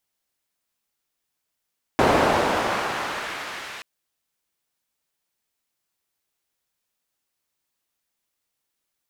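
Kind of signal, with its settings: swept filtered noise pink, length 1.83 s bandpass, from 550 Hz, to 2.2 kHz, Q 0.91, exponential, gain ramp -21.5 dB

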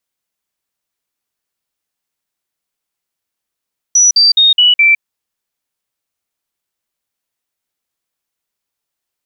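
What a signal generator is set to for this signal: stepped sine 5.89 kHz down, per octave 3, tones 5, 0.16 s, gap 0.05 s -5 dBFS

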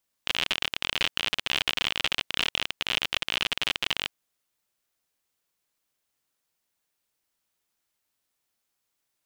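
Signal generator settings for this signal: random clicks 53 per s -9 dBFS 3.85 s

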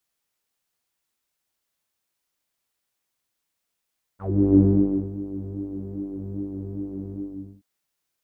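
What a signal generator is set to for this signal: synth patch with pulse-width modulation G2, filter lowpass, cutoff 270 Hz, Q 8.4, filter envelope 2.5 oct, filter decay 0.11 s, filter sustain 10%, attack 354 ms, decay 0.55 s, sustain -17.5 dB, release 0.49 s, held 2.94 s, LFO 2.5 Hz, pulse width 21%, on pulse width 16%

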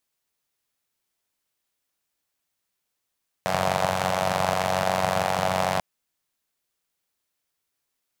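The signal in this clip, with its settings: four-cylinder engine model, steady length 2.34 s, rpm 2800, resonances 150/670 Hz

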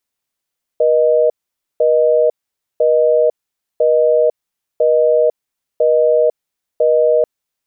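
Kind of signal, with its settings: call progress tone busy tone, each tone -12 dBFS 6.44 s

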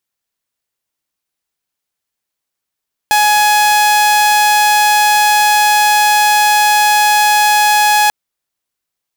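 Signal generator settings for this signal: tone saw 840 Hz -5.5 dBFS 4.99 s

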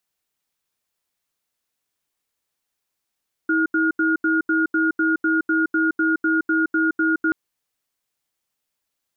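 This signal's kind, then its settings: cadence 321 Hz, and 1.43 kHz, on 0.17 s, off 0.08 s, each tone -19 dBFS 3.83 s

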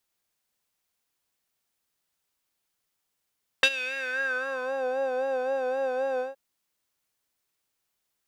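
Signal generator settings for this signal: synth patch with vibrato C5, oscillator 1 square, interval 0 st, detune 20 cents, oscillator 2 level -11 dB, sub -9 dB, noise -19 dB, filter bandpass, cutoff 780 Hz, Q 3.6, filter envelope 2 oct, filter decay 1.22 s, filter sustain 0%, attack 2.5 ms, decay 0.06 s, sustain -17.5 dB, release 0.15 s, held 2.57 s, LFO 3.8 Hz, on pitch 64 cents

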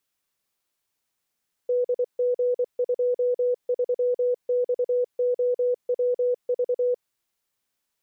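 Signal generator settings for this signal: Morse "DG23XOWV" 24 wpm 493 Hz -19.5 dBFS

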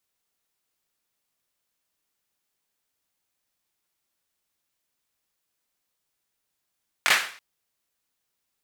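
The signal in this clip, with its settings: hand clap length 0.33 s, bursts 3, apart 21 ms, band 1.8 kHz, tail 0.47 s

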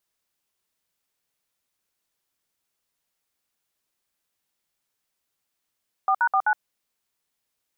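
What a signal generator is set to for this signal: DTMF "4#49", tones 67 ms, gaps 61 ms, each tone -20 dBFS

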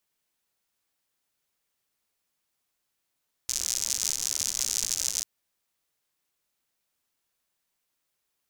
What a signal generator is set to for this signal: rain from filtered ticks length 1.74 s, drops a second 110, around 6.3 kHz, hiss -20 dB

